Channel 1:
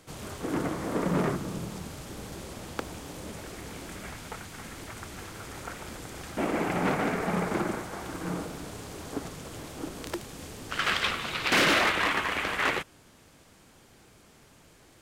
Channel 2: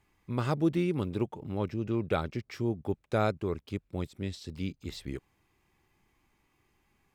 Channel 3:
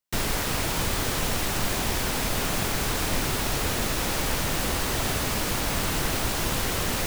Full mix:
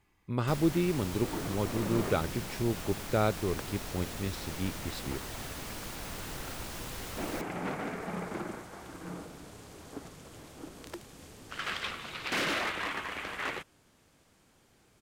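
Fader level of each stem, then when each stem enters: -8.5 dB, 0.0 dB, -14.5 dB; 0.80 s, 0.00 s, 0.35 s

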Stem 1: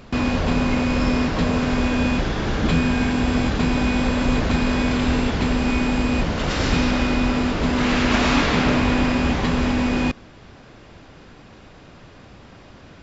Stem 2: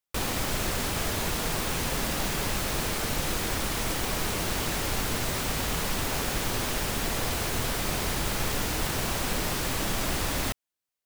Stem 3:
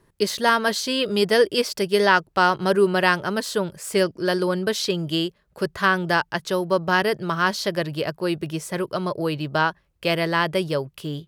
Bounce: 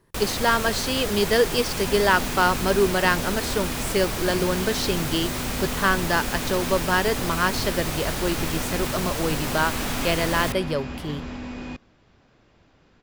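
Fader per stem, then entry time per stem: -14.0 dB, 0.0 dB, -2.0 dB; 1.65 s, 0.00 s, 0.00 s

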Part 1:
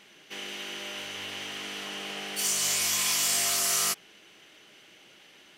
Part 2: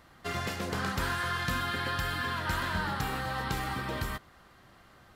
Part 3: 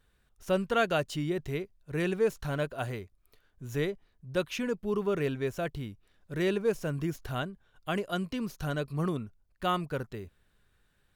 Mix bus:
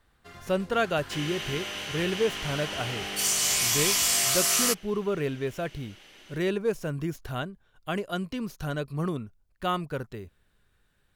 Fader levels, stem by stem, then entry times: +2.0 dB, -13.5 dB, +1.0 dB; 0.80 s, 0.00 s, 0.00 s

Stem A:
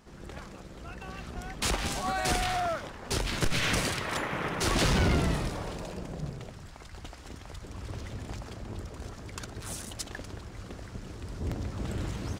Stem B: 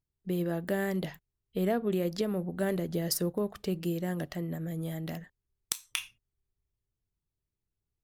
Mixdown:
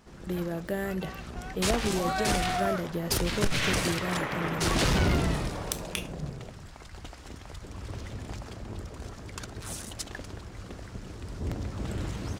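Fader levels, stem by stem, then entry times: +0.5 dB, -1.0 dB; 0.00 s, 0.00 s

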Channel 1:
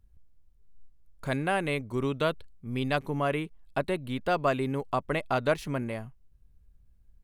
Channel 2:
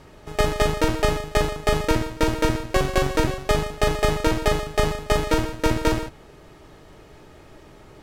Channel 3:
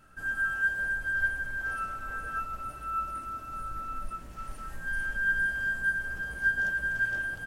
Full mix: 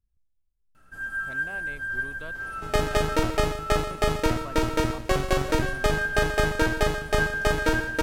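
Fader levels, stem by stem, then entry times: -15.5 dB, -3.0 dB, -1.5 dB; 0.00 s, 2.35 s, 0.75 s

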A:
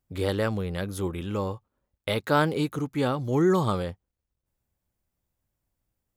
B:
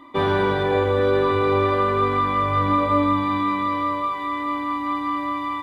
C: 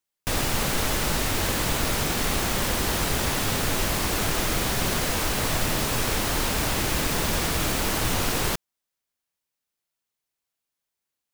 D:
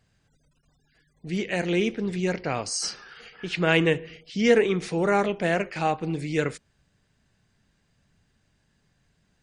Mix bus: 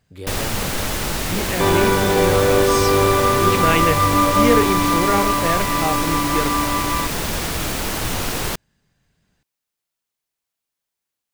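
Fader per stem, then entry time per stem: -5.5 dB, +3.0 dB, +1.5 dB, +1.0 dB; 0.00 s, 1.45 s, 0.00 s, 0.00 s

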